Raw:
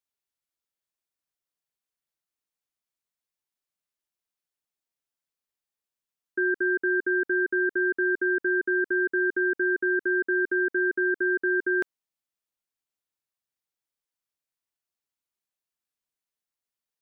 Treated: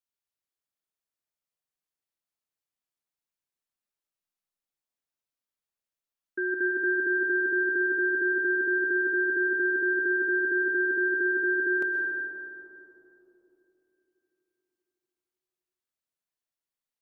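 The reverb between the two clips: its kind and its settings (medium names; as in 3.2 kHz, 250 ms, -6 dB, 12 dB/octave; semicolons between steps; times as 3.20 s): algorithmic reverb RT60 3.4 s, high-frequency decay 0.3×, pre-delay 85 ms, DRR 2 dB; trim -4.5 dB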